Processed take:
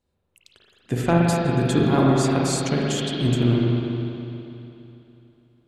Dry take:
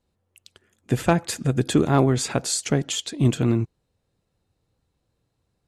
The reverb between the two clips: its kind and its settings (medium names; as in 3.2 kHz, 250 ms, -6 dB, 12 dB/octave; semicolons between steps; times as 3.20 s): spring tank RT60 3 s, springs 41/59 ms, chirp 20 ms, DRR -4 dB; trim -3.5 dB